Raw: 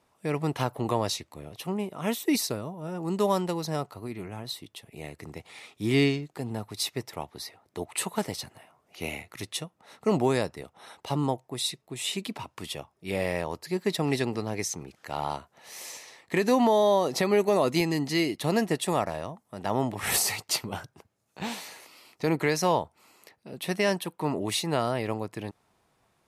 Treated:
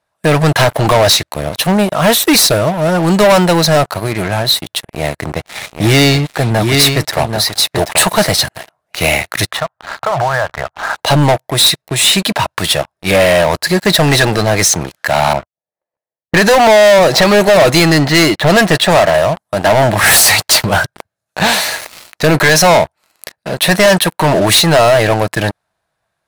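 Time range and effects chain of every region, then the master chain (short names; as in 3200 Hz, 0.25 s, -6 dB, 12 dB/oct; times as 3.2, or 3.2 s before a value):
4.83–8.43 echo 0.784 s -7 dB + mismatched tape noise reduction decoder only
9.51–10.95 block floating point 7-bit + EQ curve 130 Hz 0 dB, 230 Hz -27 dB, 690 Hz +3 dB, 1400 Hz +7 dB, 2600 Hz -9 dB, 6900 Hz -23 dB + compressor 12:1, threshold -35 dBFS
15.33–19.14 low-pass opened by the level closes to 370 Hz, open at -21 dBFS + gate -52 dBFS, range -29 dB
whole clip: thirty-one-band EQ 250 Hz -12 dB, 400 Hz -7 dB, 630 Hz +7 dB, 1600 Hz +10 dB, 4000 Hz +5 dB, 10000 Hz +3 dB; sample leveller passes 5; gain +5.5 dB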